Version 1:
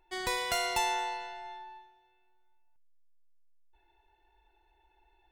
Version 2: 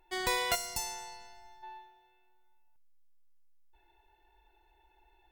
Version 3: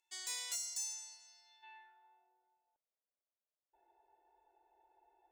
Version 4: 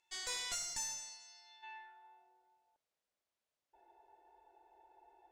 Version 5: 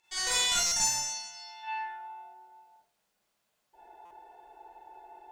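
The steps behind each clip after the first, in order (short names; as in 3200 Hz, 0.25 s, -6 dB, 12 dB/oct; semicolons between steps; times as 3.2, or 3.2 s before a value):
spectral gain 0.55–1.63, 260–4200 Hz -14 dB; bell 16000 Hz +11 dB 0.25 oct; gain +1.5 dB
band-pass sweep 6900 Hz -> 610 Hz, 1.26–2.3; soft clip -36.5 dBFS, distortion -12 dB; gain +3.5 dB
one diode to ground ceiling -44.5 dBFS; air absorption 55 m; gain +7 dB
reverb RT60 0.45 s, pre-delay 35 ms, DRR -6.5 dB; stuck buffer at 0.66/4.05, samples 256, times 9; gain +6 dB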